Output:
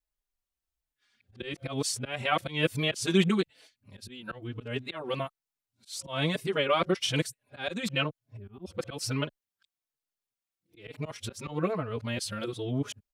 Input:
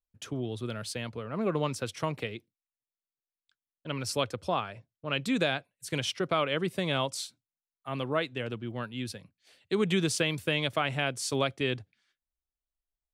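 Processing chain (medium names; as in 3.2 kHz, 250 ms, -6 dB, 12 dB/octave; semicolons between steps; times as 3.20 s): reverse the whole clip; slow attack 184 ms; time-frequency box 8.36–8.65 s, 450–11000 Hz -24 dB; endless flanger 4.2 ms -1.1 Hz; trim +5.5 dB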